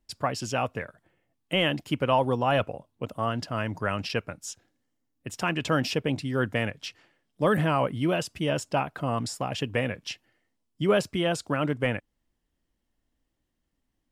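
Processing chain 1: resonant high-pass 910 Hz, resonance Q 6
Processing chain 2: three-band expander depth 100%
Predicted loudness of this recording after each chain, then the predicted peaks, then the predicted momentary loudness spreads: -24.0, -26.0 LUFS; -3.0, -6.5 dBFS; 18, 18 LU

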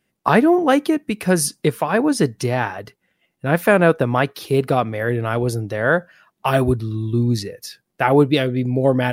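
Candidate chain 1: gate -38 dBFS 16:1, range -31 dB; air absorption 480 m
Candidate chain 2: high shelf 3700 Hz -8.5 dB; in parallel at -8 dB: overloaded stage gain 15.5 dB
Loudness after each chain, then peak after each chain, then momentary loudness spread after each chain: -20.5, -17.0 LUFS; -4.0, -1.5 dBFS; 8, 7 LU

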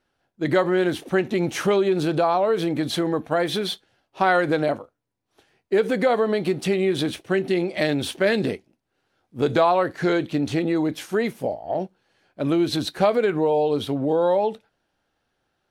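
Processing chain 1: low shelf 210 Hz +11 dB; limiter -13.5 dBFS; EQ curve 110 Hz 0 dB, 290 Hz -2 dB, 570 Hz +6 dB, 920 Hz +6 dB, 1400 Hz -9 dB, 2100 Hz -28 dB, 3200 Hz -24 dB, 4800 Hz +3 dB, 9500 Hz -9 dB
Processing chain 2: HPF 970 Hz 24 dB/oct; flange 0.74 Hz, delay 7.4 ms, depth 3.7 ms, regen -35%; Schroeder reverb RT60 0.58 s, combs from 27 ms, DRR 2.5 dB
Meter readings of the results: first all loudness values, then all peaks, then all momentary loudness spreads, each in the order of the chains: -21.0, -33.0 LUFS; -8.0, -13.5 dBFS; 8, 14 LU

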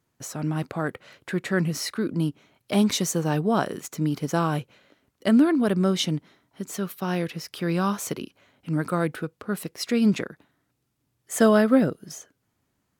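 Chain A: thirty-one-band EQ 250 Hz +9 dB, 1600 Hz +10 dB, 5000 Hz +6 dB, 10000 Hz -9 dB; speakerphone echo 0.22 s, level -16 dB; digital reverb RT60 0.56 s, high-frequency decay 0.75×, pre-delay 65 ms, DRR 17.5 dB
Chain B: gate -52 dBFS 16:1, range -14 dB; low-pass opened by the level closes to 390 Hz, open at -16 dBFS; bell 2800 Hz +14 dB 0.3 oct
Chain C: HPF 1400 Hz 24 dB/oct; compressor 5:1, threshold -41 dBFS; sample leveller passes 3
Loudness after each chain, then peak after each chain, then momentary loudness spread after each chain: -21.5, -24.5, -34.5 LUFS; -2.5, -7.0, -23.5 dBFS; 17, 14, 8 LU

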